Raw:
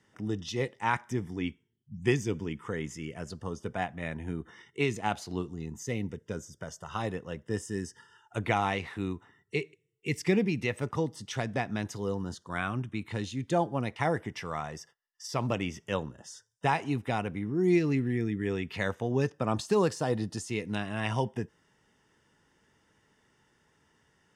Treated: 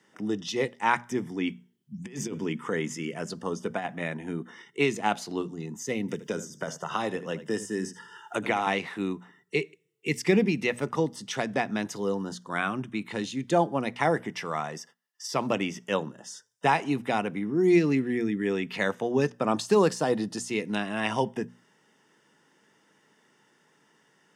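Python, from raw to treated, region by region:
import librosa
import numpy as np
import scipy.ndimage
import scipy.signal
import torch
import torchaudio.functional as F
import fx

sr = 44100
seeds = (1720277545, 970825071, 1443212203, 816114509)

y = fx.chain(x, sr, fx.hum_notches(base_hz=50, count=3),
    fx.over_compress(threshold_db=-33.0, ratio=-0.5), at=(1.47, 4.03))
y = fx.chain(y, sr, fx.hum_notches(base_hz=50, count=4),
    fx.echo_single(ms=77, db=-15.5),
    fx.band_squash(depth_pct=70), at=(6.08, 8.67))
y = scipy.signal.sosfilt(scipy.signal.butter(4, 160.0, 'highpass', fs=sr, output='sos'), y)
y = fx.hum_notches(y, sr, base_hz=60, count=4)
y = y * librosa.db_to_amplitude(4.5)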